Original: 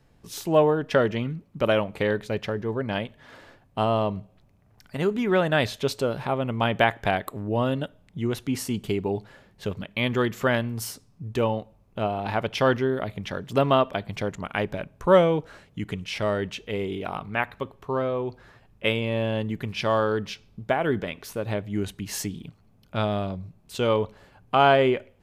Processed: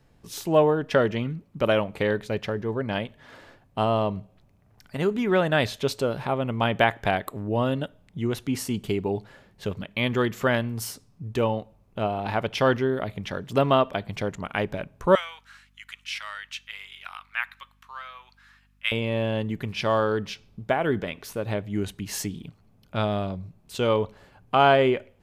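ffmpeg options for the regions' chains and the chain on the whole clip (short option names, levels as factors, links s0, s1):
-filter_complex "[0:a]asettb=1/sr,asplit=3[s0][s1][s2];[s0]atrim=end=15.154[s3];[s1]atrim=start=15.15:end=18.92,asetpts=PTS-STARTPTS,afade=t=in:d=0.004:c=qsin,afade=t=out:st=3.766:d=0.004:c=qsin,highpass=f=1300:w=0.5412,highpass=f=1300:w=1.3066,aeval=exprs='val(0)+0.000794*(sin(2*PI*50*n/s)+sin(2*PI*2*50*n/s)/2+sin(2*PI*3*50*n/s)/3+sin(2*PI*4*50*n/s)/4+sin(2*PI*5*50*n/s)/5)':c=same[s4];[s2]atrim=start=18.916[s5];[s3][s4]acrossfade=d=0.004:c1=hsin:c2=qsin[s6];[s6][s5]acrossfade=d=0.004:c1=qsin:c2=hsin"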